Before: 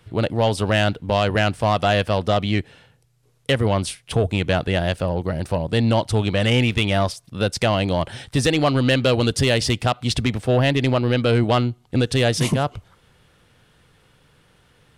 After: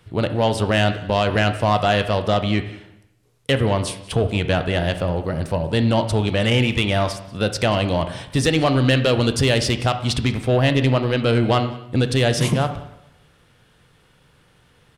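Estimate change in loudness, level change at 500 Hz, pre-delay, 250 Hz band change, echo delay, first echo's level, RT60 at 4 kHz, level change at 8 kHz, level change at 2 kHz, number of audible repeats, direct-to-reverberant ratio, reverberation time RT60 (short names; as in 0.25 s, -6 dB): +0.5 dB, +0.5 dB, 7 ms, +0.5 dB, 0.186 s, -22.0 dB, 0.70 s, 0.0 dB, +0.5 dB, 1, 8.5 dB, 0.80 s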